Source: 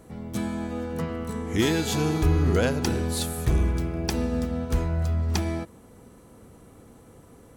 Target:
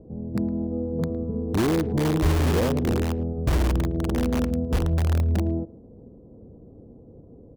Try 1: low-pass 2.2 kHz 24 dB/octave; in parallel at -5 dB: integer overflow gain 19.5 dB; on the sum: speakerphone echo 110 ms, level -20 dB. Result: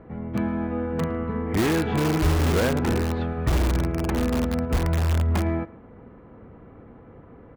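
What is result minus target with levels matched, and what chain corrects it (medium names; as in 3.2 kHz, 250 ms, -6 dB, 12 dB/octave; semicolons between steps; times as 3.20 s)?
2 kHz band +4.5 dB
low-pass 570 Hz 24 dB/octave; in parallel at -5 dB: integer overflow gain 19.5 dB; on the sum: speakerphone echo 110 ms, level -20 dB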